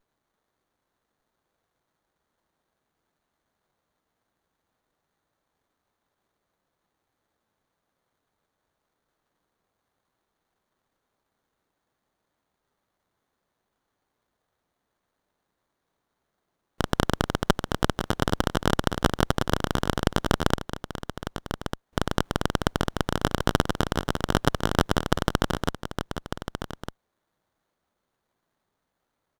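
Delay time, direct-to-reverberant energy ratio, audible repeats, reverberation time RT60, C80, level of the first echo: 1,199 ms, no reverb audible, 1, no reverb audible, no reverb audible, −9.5 dB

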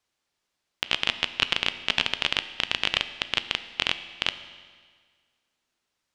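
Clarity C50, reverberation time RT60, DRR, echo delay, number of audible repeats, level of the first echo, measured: 12.5 dB, 1.7 s, 11.0 dB, no echo audible, no echo audible, no echo audible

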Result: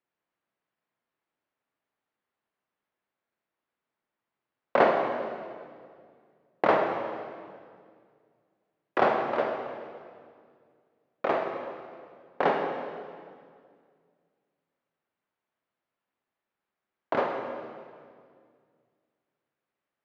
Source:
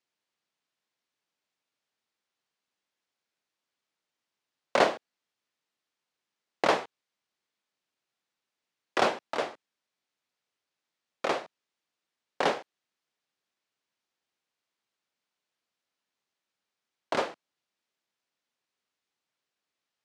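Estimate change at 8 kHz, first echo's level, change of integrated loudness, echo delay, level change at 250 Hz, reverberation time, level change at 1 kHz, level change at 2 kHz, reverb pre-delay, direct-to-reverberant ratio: below −15 dB, no echo audible, +1.0 dB, no echo audible, +4.0 dB, 2.1 s, +3.5 dB, +0.5 dB, 32 ms, 2.5 dB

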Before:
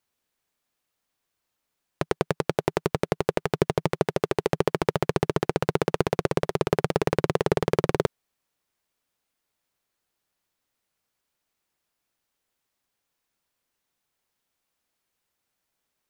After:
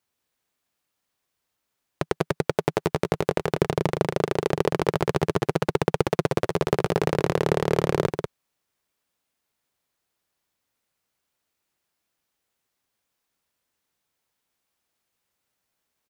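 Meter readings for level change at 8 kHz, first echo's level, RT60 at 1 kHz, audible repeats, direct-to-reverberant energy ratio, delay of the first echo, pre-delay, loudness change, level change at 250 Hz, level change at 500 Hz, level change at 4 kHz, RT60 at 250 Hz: +1.0 dB, −6.0 dB, no reverb audible, 1, no reverb audible, 191 ms, no reverb audible, +1.0 dB, +1.5 dB, +1.0 dB, +1.0 dB, no reverb audible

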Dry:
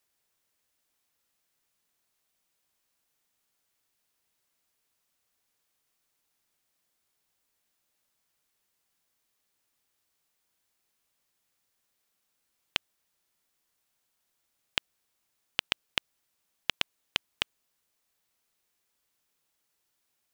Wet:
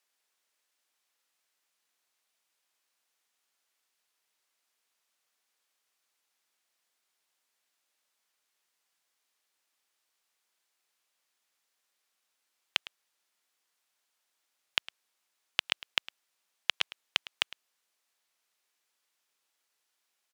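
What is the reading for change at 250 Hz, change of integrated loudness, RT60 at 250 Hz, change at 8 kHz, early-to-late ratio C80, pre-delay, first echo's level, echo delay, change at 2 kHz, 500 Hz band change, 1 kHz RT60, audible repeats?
−8.0 dB, +1.0 dB, no reverb audible, −0.5 dB, no reverb audible, no reverb audible, −18.5 dB, 107 ms, +1.5 dB, −3.0 dB, no reverb audible, 1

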